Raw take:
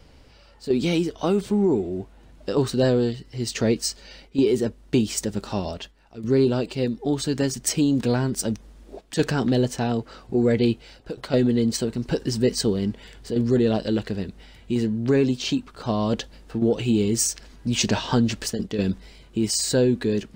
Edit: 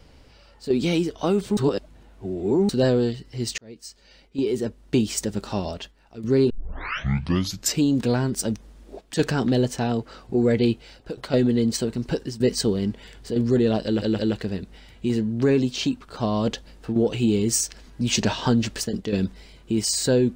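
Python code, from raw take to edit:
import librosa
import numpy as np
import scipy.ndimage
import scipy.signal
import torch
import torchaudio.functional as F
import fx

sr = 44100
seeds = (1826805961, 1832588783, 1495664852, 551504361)

y = fx.edit(x, sr, fx.reverse_span(start_s=1.57, length_s=1.12),
    fx.fade_in_span(start_s=3.58, length_s=1.44),
    fx.tape_start(start_s=6.5, length_s=1.31),
    fx.fade_out_to(start_s=12.0, length_s=0.4, curve='qsin', floor_db=-15.0),
    fx.stutter(start_s=13.85, slice_s=0.17, count=3), tone=tone)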